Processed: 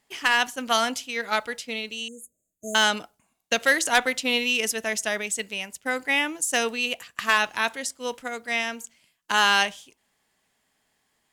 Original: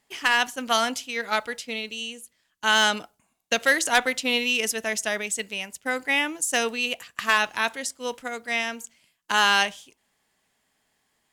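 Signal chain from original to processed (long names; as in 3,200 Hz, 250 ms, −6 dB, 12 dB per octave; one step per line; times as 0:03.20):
0:02.08–0:02.75: linear-phase brick-wall band-stop 670–6,300 Hz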